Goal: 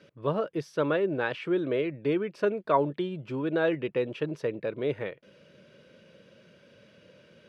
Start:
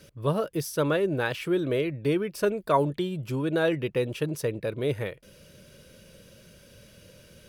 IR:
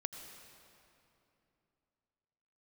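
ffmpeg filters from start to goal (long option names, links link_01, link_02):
-af "highpass=180,lowpass=3000,volume=-1dB"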